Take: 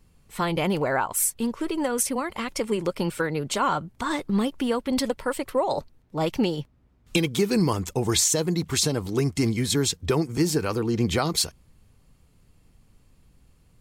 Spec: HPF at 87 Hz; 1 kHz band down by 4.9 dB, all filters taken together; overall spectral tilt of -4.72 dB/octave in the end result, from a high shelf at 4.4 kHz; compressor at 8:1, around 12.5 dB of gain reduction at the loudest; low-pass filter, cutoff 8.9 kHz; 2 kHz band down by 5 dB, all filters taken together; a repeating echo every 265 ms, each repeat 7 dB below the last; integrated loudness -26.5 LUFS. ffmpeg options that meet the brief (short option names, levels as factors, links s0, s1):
-af "highpass=87,lowpass=8900,equalizer=f=1000:t=o:g=-5,equalizer=f=2000:t=o:g=-3.5,highshelf=f=4400:g=-7,acompressor=threshold=0.0251:ratio=8,aecho=1:1:265|530|795|1060|1325:0.447|0.201|0.0905|0.0407|0.0183,volume=2.99"